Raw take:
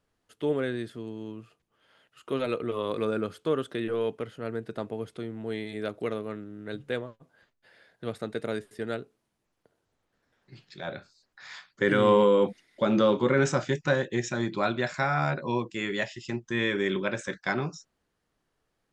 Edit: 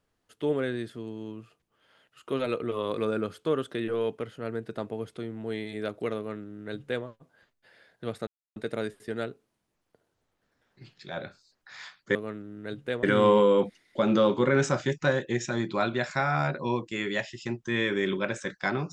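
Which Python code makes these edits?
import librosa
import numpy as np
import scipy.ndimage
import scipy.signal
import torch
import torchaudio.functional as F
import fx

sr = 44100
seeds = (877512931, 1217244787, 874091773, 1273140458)

y = fx.edit(x, sr, fx.duplicate(start_s=6.17, length_s=0.88, to_s=11.86),
    fx.insert_silence(at_s=8.27, length_s=0.29), tone=tone)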